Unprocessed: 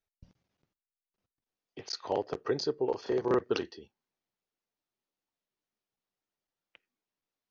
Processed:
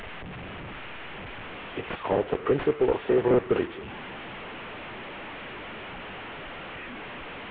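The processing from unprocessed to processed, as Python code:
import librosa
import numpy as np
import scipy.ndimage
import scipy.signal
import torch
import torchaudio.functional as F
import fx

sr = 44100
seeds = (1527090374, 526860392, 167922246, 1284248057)

p1 = fx.delta_mod(x, sr, bps=16000, step_db=-40.0)
p2 = fx.level_steps(p1, sr, step_db=22)
p3 = p1 + F.gain(torch.from_numpy(p2), -2.5).numpy()
y = F.gain(torch.from_numpy(p3), 7.0).numpy()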